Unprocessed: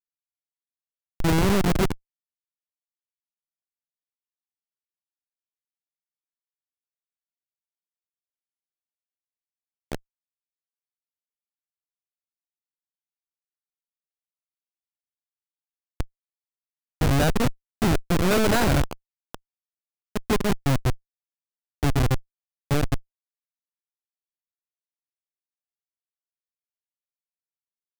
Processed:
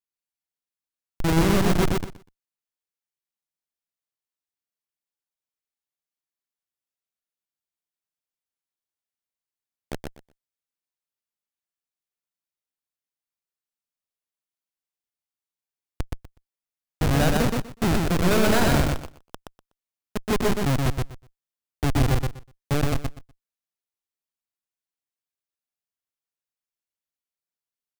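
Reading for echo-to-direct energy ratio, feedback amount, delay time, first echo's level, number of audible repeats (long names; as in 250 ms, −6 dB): −3.0 dB, 18%, 123 ms, −3.0 dB, 3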